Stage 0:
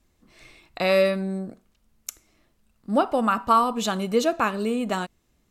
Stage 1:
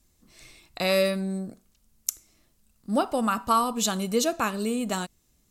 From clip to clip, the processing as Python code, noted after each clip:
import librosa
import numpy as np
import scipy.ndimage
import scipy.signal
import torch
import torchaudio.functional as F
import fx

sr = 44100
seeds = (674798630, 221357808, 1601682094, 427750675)

y = fx.bass_treble(x, sr, bass_db=4, treble_db=12)
y = y * 10.0 ** (-4.0 / 20.0)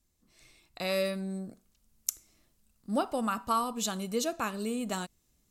y = fx.rider(x, sr, range_db=10, speed_s=2.0)
y = y * 10.0 ** (-6.5 / 20.0)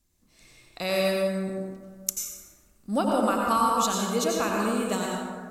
y = fx.rev_plate(x, sr, seeds[0], rt60_s=1.7, hf_ratio=0.45, predelay_ms=75, drr_db=-2.0)
y = y * 10.0 ** (3.0 / 20.0)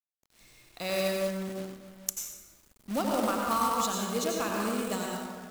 y = fx.quant_companded(x, sr, bits=4)
y = y * 10.0 ** (-5.0 / 20.0)